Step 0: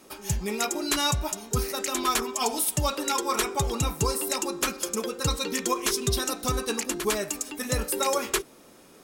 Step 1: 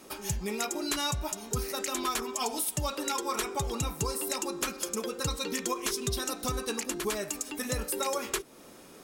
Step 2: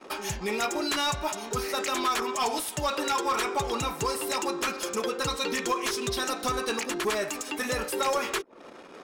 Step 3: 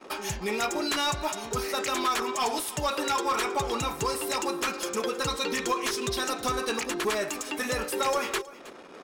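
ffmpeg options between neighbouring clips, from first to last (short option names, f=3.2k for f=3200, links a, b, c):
-af "acompressor=threshold=-35dB:ratio=2,volume=1.5dB"
-filter_complex "[0:a]asplit=2[a][b];[b]highpass=f=720:p=1,volume=17dB,asoftclip=type=tanh:threshold=-16dB[c];[a][c]amix=inputs=2:normalize=0,lowpass=f=2.8k:p=1,volume=-6dB,anlmdn=0.0631"
-af "aecho=1:1:318:0.119"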